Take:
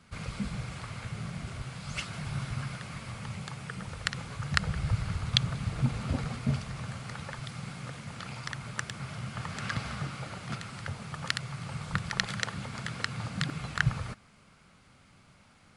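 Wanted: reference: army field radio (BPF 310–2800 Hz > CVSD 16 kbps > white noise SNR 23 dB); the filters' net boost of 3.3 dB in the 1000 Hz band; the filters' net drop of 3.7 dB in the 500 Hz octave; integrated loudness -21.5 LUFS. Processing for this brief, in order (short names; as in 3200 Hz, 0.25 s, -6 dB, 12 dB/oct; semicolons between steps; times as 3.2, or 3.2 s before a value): BPF 310–2800 Hz; bell 500 Hz -6 dB; bell 1000 Hz +6 dB; CVSD 16 kbps; white noise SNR 23 dB; gain +20 dB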